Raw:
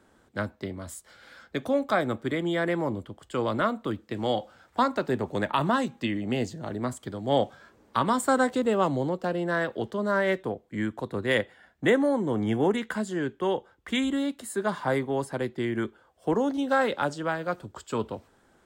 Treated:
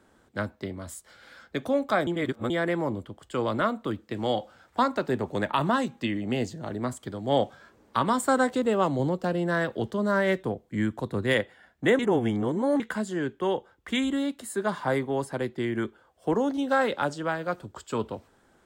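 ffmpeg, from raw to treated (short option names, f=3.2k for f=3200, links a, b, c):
-filter_complex "[0:a]asettb=1/sr,asplit=3[a][b][c];[a]atrim=end=8.994[d];[b]atrim=start=8.99:end=11.34,asetpts=PTS-STARTPTS,afade=t=in:d=0.004:c=qsin,afade=t=out:st=2.346:d=0.004:c=qsin,bass=f=250:g=5,treble=f=4k:g=3[e];[c]atrim=start=11.336[f];[d][e]acrossfade=d=0.004:c1=hsin:c2=qsin[g];[g][f]acrossfade=d=0.004:c1=qsin:c2=hsin,asplit=5[h][i][j][k][l];[h]atrim=end=2.072[m];[i]atrim=start=2.068:end=2.502,asetpts=PTS-STARTPTS,areverse[n];[j]atrim=start=2.498:end=11.992[o];[k]atrim=start=11.988:end=12.802,asetpts=PTS-STARTPTS,areverse[p];[l]atrim=start=12.798[q];[m][n]acrossfade=d=0.004:c1=hsin:c2=hsin[r];[r][o]acrossfade=d=0.004:c1=hsin:c2=hsin[s];[s][p]acrossfade=d=0.004:c1=hsin:c2=hsin[t];[t][q]acrossfade=d=0.004:c1=hsin:c2=hsin"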